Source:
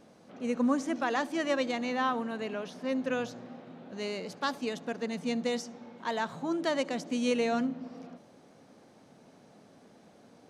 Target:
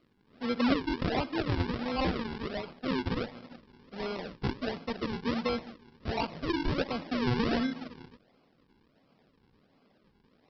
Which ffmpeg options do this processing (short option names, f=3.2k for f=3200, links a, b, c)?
-af "agate=range=-9dB:threshold=-44dB:ratio=16:detection=peak,aresample=11025,acrusher=samples=12:mix=1:aa=0.000001:lfo=1:lforange=12:lforate=1.4,aresample=44100" -ar 48000 -c:a libopus -b:a 24k